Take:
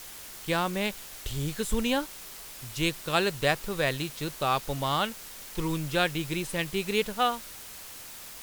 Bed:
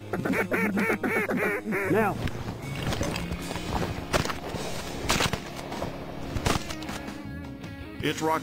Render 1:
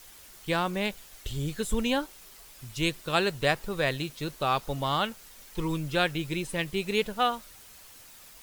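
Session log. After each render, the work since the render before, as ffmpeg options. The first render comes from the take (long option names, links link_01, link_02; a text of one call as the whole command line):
ffmpeg -i in.wav -af "afftdn=noise_reduction=8:noise_floor=-44" out.wav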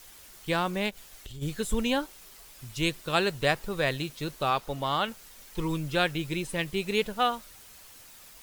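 ffmpeg -i in.wav -filter_complex "[0:a]asplit=3[link_01][link_02][link_03];[link_01]afade=type=out:start_time=0.89:duration=0.02[link_04];[link_02]acompressor=threshold=-39dB:ratio=5:attack=3.2:release=140:knee=1:detection=peak,afade=type=in:start_time=0.89:duration=0.02,afade=type=out:start_time=1.41:duration=0.02[link_05];[link_03]afade=type=in:start_time=1.41:duration=0.02[link_06];[link_04][link_05][link_06]amix=inputs=3:normalize=0,asettb=1/sr,asplit=3[link_07][link_08][link_09];[link_07]atrim=end=4.504[link_10];[link_08]atrim=start=4.5:end=5.08,asetpts=PTS-STARTPTS,afade=type=in:duration=0.004:curve=qsin,afade=type=out:start_time=0.576:duration=0.004:curve=qsin,bass=frequency=250:gain=-4,treble=frequency=4000:gain=-3[link_11];[link_09]atrim=start=5.076[link_12];[link_10][link_11]acrossfade=duration=0.004:curve1=hsin:curve2=qsin[link_13];[link_13][link_12]acrossfade=duration=0.004:curve1=qsin:curve2=hsin" out.wav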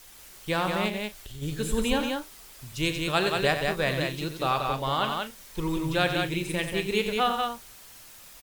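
ffmpeg -i in.wav -filter_complex "[0:a]asplit=2[link_01][link_02];[link_02]adelay=38,volume=-13dB[link_03];[link_01][link_03]amix=inputs=2:normalize=0,aecho=1:1:90.38|183.7:0.355|0.631" out.wav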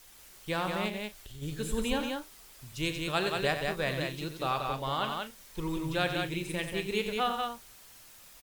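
ffmpeg -i in.wav -af "volume=-5dB" out.wav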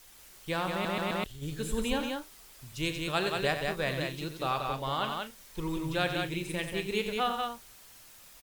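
ffmpeg -i in.wav -filter_complex "[0:a]asplit=5[link_01][link_02][link_03][link_04][link_05];[link_01]atrim=end=0.852[link_06];[link_02]atrim=start=0.718:end=0.852[link_07];[link_03]atrim=start=0.718:end=0.852[link_08];[link_04]atrim=start=0.718:end=0.852[link_09];[link_05]atrim=start=1.238[link_10];[link_06][link_07]acrossfade=duration=0.004:curve1=hsin:curve2=hsin[link_11];[link_11][link_08]acrossfade=duration=0.004:curve1=hsin:curve2=hsin[link_12];[link_12][link_09]acrossfade=duration=0.004:curve1=hsin:curve2=hsin[link_13];[link_13][link_10]acrossfade=duration=0.004:curve1=hsin:curve2=hsin" out.wav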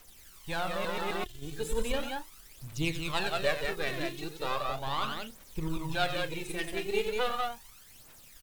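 ffmpeg -i in.wav -af "aeval=exprs='if(lt(val(0),0),0.447*val(0),val(0))':channel_layout=same,aphaser=in_gain=1:out_gain=1:delay=3:decay=0.59:speed=0.37:type=triangular" out.wav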